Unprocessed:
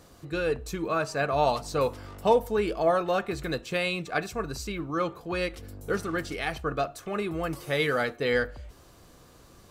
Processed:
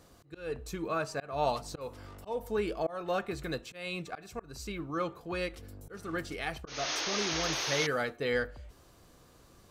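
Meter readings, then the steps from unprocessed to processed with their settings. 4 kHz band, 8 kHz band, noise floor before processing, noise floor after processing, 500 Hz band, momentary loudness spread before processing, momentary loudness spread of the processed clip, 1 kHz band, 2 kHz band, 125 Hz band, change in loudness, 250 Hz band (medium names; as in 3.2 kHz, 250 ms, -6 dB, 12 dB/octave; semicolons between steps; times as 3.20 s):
+0.5 dB, +4.5 dB, -54 dBFS, -59 dBFS, -7.5 dB, 9 LU, 13 LU, -7.0 dB, -5.0 dB, -6.5 dB, -5.5 dB, -6.0 dB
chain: painted sound noise, 6.67–7.87 s, 270–6700 Hz -29 dBFS; slow attack 249 ms; trim -5 dB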